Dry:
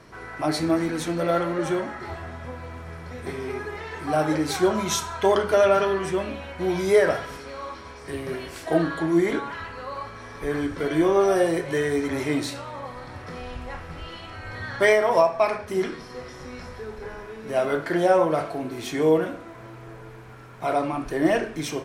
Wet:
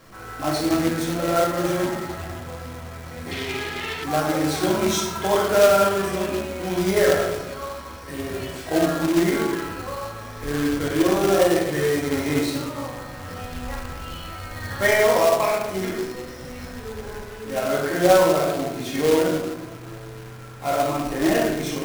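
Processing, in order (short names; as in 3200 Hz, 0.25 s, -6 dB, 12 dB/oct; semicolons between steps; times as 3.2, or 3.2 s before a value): shoebox room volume 420 m³, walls mixed, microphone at 2.2 m; companded quantiser 4-bit; 3.31–4.04 bell 3200 Hz +13.5 dB 1.3 oct; gain -4.5 dB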